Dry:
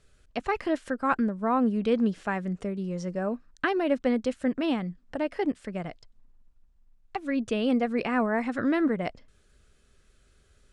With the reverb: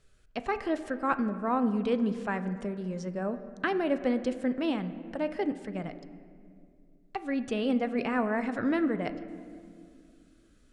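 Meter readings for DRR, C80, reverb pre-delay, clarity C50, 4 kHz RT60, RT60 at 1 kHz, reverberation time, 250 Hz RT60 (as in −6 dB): 10.0 dB, 13.5 dB, 5 ms, 12.0 dB, 1.4 s, 1.9 s, 2.3 s, 3.1 s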